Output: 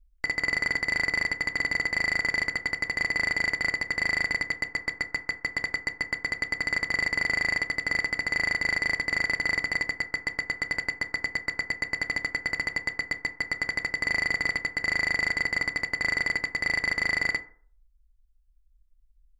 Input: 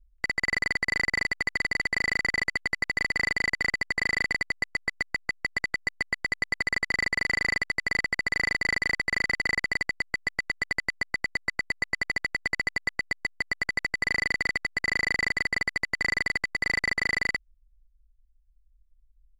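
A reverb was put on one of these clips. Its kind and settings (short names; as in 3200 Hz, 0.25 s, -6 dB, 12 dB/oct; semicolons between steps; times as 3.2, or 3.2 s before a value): FDN reverb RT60 0.49 s, low-frequency decay 0.85×, high-frequency decay 0.4×, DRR 7 dB; gain -1 dB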